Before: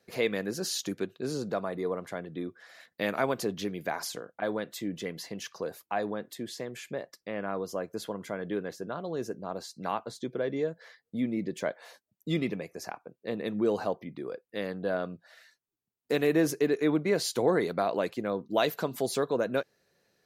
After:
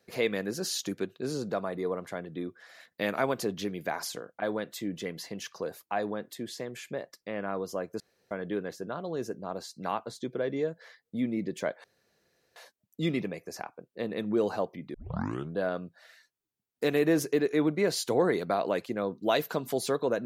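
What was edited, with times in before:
0:08.00–0:08.31: fill with room tone
0:11.84: splice in room tone 0.72 s
0:14.22: tape start 0.63 s

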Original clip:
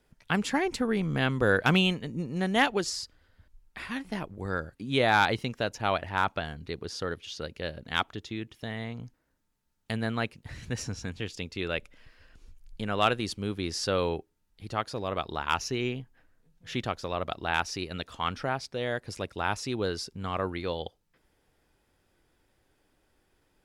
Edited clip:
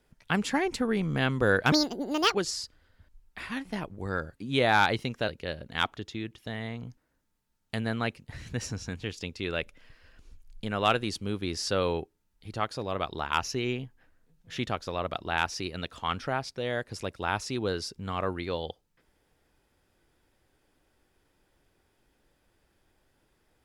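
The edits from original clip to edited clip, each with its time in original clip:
0:01.72–0:02.74: play speed 163%
0:05.67–0:07.44: remove

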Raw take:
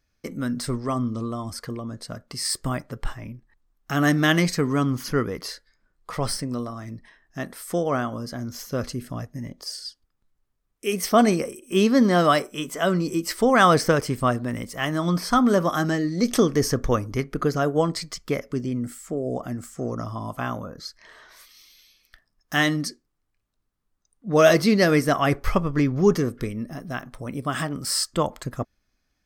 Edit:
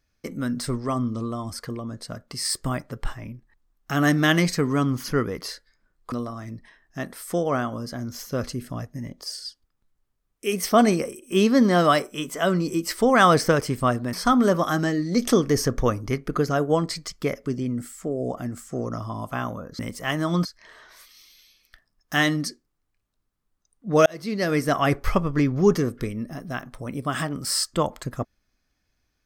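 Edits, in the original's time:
0:06.12–0:06.52: remove
0:14.53–0:15.19: move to 0:20.85
0:24.46–0:25.21: fade in

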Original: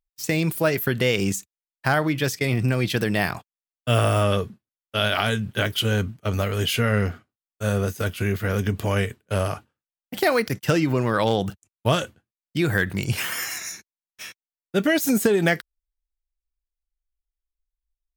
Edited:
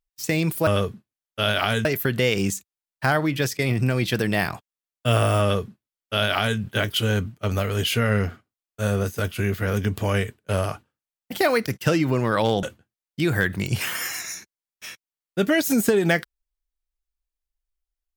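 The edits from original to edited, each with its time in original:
0:04.23–0:05.41: duplicate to 0:00.67
0:11.45–0:12.00: remove

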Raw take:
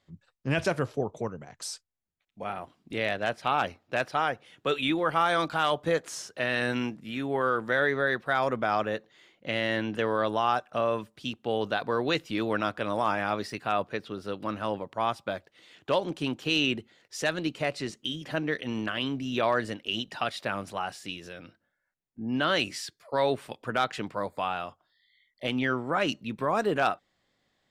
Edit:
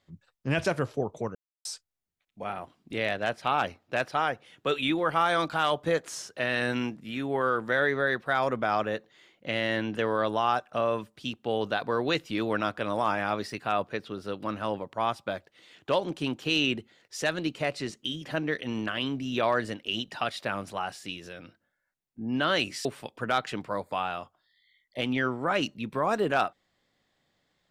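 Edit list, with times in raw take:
0:01.35–0:01.65: silence
0:22.85–0:23.31: remove

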